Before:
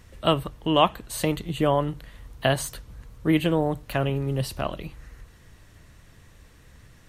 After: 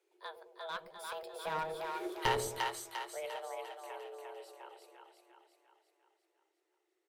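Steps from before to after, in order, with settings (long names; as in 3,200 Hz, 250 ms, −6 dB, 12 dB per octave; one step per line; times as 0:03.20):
source passing by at 0:02.05, 33 m/s, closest 2.6 metres
frequency shifter +310 Hz
high-pass filter 410 Hz 6 dB per octave
double-tracking delay 14 ms −13 dB
asymmetric clip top −39 dBFS
echo with a time of its own for lows and highs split 590 Hz, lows 105 ms, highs 349 ms, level −3.5 dB
level +3.5 dB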